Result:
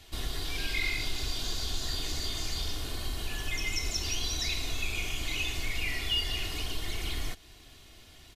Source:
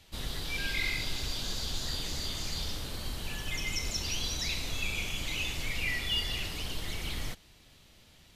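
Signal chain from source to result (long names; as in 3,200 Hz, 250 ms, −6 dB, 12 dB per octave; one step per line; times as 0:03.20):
comb filter 2.8 ms, depth 49%
in parallel at +3 dB: downward compressor, threshold −38 dBFS, peak gain reduction 13.5 dB
on the sum: level −3.5 dB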